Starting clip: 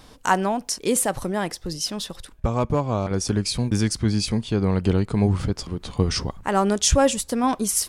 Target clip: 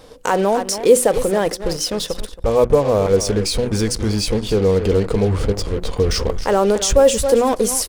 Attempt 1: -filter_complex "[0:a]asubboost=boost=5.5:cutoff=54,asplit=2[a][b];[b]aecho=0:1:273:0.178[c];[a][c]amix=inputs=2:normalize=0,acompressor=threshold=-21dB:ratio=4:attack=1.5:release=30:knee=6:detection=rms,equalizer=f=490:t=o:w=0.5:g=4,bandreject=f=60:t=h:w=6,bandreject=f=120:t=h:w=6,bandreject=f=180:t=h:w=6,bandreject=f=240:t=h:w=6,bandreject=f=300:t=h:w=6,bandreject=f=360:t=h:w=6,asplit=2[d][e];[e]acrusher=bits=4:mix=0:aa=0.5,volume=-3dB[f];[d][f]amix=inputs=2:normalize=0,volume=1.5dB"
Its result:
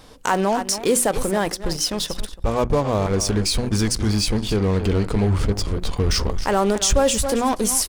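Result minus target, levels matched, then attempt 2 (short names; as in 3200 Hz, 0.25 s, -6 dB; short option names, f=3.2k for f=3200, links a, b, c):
500 Hz band -4.0 dB
-filter_complex "[0:a]asubboost=boost=5.5:cutoff=54,asplit=2[a][b];[b]aecho=0:1:273:0.178[c];[a][c]amix=inputs=2:normalize=0,acompressor=threshold=-21dB:ratio=4:attack=1.5:release=30:knee=6:detection=rms,equalizer=f=490:t=o:w=0.5:g=15,bandreject=f=60:t=h:w=6,bandreject=f=120:t=h:w=6,bandreject=f=180:t=h:w=6,bandreject=f=240:t=h:w=6,bandreject=f=300:t=h:w=6,bandreject=f=360:t=h:w=6,asplit=2[d][e];[e]acrusher=bits=4:mix=0:aa=0.5,volume=-3dB[f];[d][f]amix=inputs=2:normalize=0,volume=1.5dB"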